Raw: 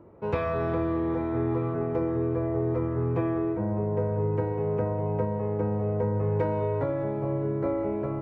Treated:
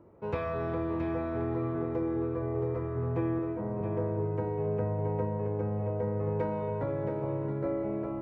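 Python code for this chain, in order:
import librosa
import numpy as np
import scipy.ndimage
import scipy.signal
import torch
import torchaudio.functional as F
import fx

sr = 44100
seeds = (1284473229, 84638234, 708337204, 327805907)

y = fx.highpass(x, sr, hz=180.0, slope=12, at=(3.39, 3.81))
y = y + 10.0 ** (-7.0 / 20.0) * np.pad(y, (int(672 * sr / 1000.0), 0))[:len(y)]
y = F.gain(torch.from_numpy(y), -5.0).numpy()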